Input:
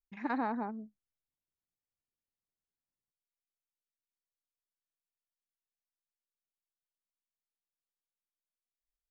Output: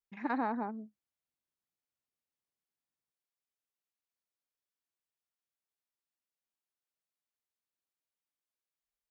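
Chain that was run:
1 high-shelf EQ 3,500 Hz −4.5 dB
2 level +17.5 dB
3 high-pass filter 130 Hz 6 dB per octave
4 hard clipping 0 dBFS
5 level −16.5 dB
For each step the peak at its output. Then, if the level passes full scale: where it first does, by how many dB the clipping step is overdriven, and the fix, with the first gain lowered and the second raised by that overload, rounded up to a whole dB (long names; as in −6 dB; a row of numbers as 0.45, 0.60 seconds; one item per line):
−21.5, −4.0, −4.0, −4.0, −20.5 dBFS
no step passes full scale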